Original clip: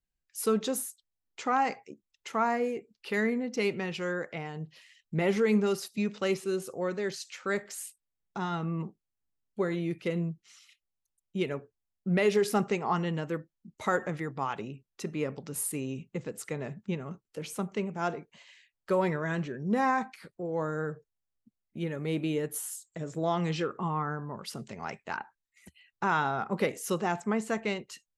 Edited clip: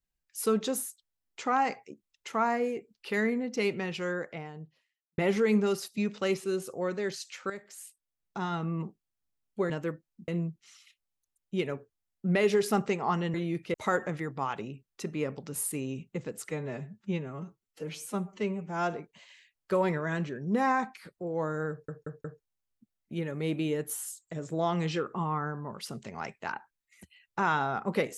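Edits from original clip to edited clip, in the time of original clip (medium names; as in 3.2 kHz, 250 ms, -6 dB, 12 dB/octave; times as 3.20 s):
4.05–5.18 s: studio fade out
7.50–8.44 s: fade in, from -12.5 dB
9.70–10.10 s: swap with 13.16–13.74 s
16.49–18.12 s: stretch 1.5×
20.89 s: stutter 0.18 s, 4 plays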